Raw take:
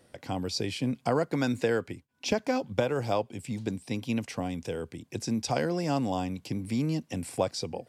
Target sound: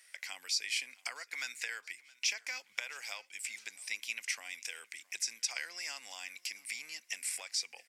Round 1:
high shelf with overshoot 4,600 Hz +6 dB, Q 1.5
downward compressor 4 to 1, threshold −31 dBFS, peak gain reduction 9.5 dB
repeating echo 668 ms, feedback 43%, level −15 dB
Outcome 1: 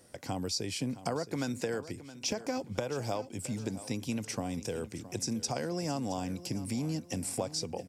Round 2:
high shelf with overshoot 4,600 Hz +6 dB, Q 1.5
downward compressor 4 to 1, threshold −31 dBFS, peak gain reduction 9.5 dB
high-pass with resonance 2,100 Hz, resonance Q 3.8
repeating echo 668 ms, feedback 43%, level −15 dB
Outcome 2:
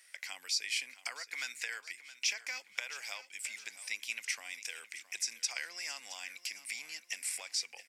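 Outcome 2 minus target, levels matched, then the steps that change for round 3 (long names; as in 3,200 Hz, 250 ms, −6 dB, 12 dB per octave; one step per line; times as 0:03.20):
echo-to-direct +8 dB
change: repeating echo 668 ms, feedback 43%, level −23 dB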